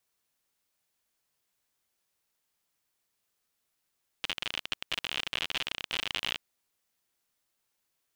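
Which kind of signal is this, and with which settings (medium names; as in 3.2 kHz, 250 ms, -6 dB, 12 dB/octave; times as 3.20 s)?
random clicks 58 per s -15.5 dBFS 2.16 s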